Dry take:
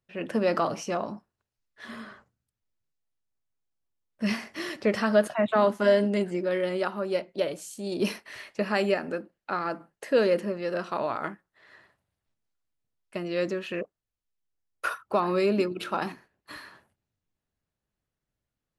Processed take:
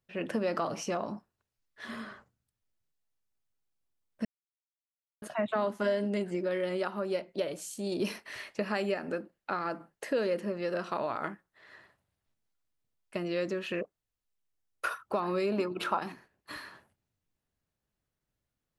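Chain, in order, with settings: 15.52–15.99 s: peaking EQ 970 Hz +11 dB 1.2 oct; compression 2.5:1, threshold -30 dBFS, peak gain reduction 10 dB; 4.25–5.22 s: mute

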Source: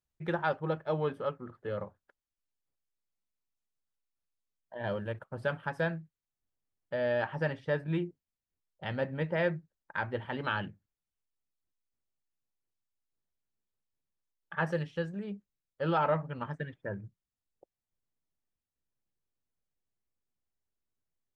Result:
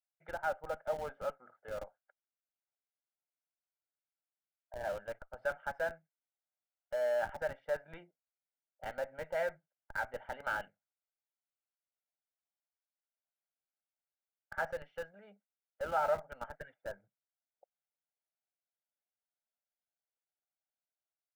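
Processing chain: Chebyshev band-pass 650–1700 Hz, order 2; peaking EQ 1.1 kHz -12 dB 2.2 oct; comb 1.4 ms, depth 63%; level rider gain up to 4.5 dB; in parallel at -5 dB: Schmitt trigger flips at -40 dBFS

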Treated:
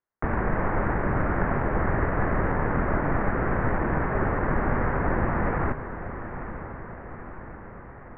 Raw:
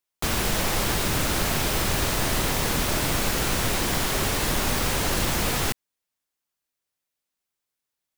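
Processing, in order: self-modulated delay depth 0.39 ms; steep low-pass 1.9 kHz 48 dB/octave; echo that smears into a reverb 952 ms, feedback 58%, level -11 dB; trim +2.5 dB

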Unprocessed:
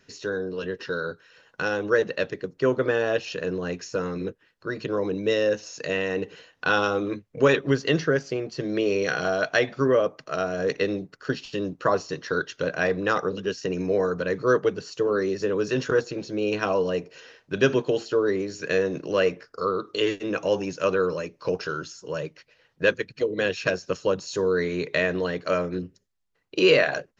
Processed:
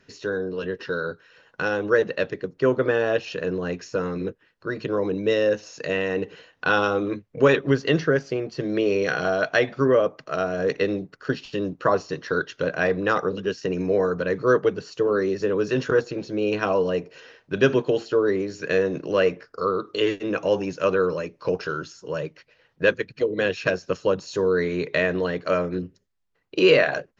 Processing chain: treble shelf 5.9 kHz -10.5 dB; trim +2 dB

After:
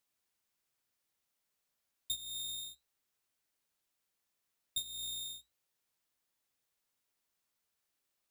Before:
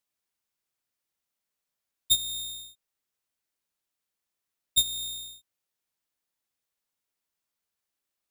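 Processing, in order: compression 5:1, threshold -40 dBFS, peak gain reduction 19 dB; flange 1.4 Hz, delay 6.8 ms, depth 2.2 ms, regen -79%; trim +6 dB

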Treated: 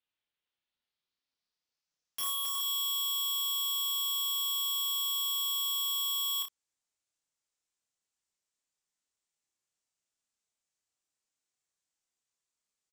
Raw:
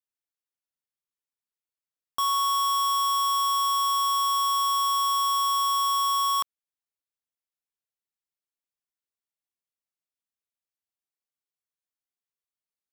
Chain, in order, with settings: low-pass sweep 3.2 kHz -> 7.5 kHz, 0.43–2.63 s; integer overflow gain 32 dB; early reflections 30 ms -4 dB, 60 ms -11.5 dB; trim +2 dB

